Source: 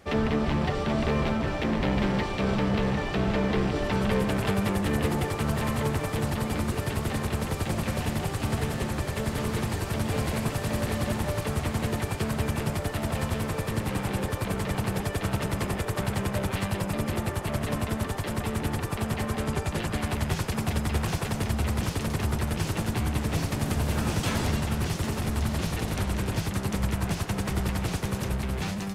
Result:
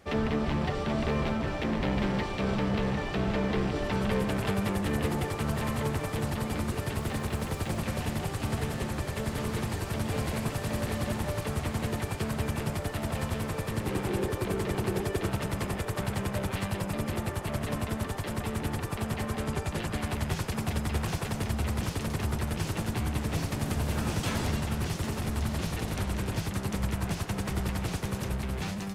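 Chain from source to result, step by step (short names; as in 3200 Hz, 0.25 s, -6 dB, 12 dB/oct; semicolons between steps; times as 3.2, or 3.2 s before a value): 6.98–7.78 added noise blue -63 dBFS; 13.84–15.31 bell 370 Hz +11.5 dB 0.38 oct; gain -3 dB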